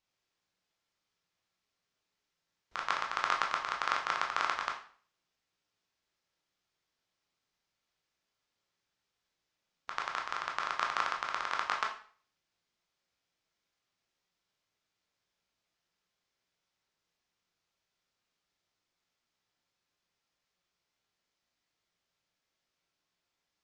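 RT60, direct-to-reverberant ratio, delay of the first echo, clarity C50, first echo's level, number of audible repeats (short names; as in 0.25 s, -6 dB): 0.45 s, 0.0 dB, none, 8.0 dB, none, none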